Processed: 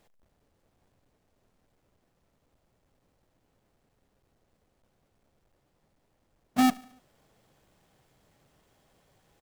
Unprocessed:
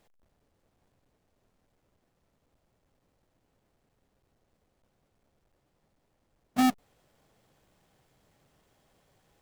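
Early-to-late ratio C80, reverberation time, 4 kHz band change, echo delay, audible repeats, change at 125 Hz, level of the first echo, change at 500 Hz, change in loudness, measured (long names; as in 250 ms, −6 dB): no reverb audible, no reverb audible, +1.5 dB, 72 ms, 3, +1.5 dB, −21.5 dB, +1.5 dB, +1.5 dB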